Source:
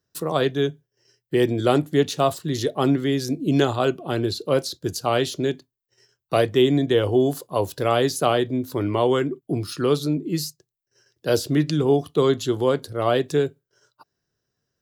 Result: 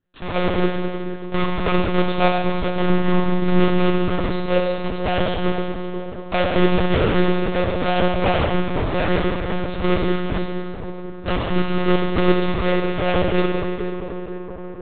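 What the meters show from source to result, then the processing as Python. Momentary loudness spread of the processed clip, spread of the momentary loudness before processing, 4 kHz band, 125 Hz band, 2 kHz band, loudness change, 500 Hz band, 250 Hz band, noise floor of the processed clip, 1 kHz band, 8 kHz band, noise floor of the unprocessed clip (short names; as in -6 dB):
10 LU, 7 LU, +0.5 dB, +3.0 dB, +6.5 dB, +1.0 dB, 0.0 dB, +2.0 dB, -32 dBFS, +3.5 dB, under -40 dB, -83 dBFS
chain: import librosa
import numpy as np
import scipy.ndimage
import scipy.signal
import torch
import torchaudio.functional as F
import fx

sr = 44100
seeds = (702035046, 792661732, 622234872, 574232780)

p1 = fx.halfwave_hold(x, sr)
p2 = p1 + 0.54 * np.pad(p1, (int(7.3 * sr / 1000.0), 0))[:len(p1)]
p3 = p2 + fx.echo_wet_lowpass(p2, sr, ms=484, feedback_pct=71, hz=1200.0, wet_db=-12, dry=0)
p4 = fx.rev_schroeder(p3, sr, rt60_s=2.1, comb_ms=32, drr_db=0.0)
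p5 = fx.lpc_monotone(p4, sr, seeds[0], pitch_hz=180.0, order=10)
y = p5 * librosa.db_to_amplitude(-5.5)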